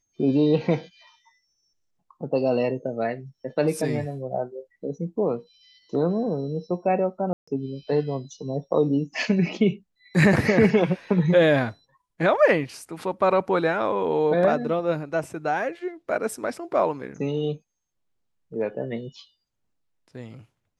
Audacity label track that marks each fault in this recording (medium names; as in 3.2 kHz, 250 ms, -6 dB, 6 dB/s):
7.330000	7.470000	dropout 145 ms